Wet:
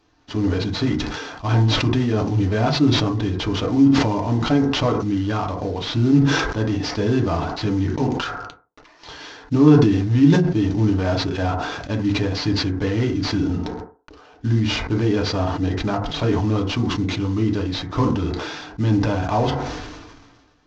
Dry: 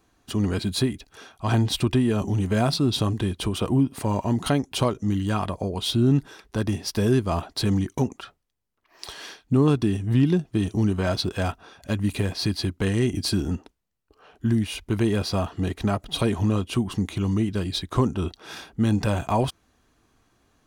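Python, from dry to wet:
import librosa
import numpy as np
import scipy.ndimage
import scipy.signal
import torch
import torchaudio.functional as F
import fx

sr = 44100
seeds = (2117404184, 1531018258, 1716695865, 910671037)

y = fx.cvsd(x, sr, bps=32000)
y = fx.rev_fdn(y, sr, rt60_s=0.36, lf_ratio=0.85, hf_ratio=0.35, size_ms=20.0, drr_db=1.0)
y = fx.sustainer(y, sr, db_per_s=37.0)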